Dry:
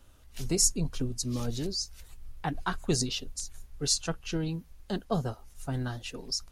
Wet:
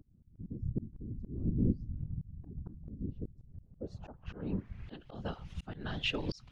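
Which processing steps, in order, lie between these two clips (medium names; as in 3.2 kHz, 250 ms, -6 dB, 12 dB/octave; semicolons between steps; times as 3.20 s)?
low-pass sweep 180 Hz -> 3.1 kHz, 3.09–5.01 s; compression 6:1, threshold -29 dBFS, peak gain reduction 10 dB; whisper effect; slow attack 610 ms; trim +9 dB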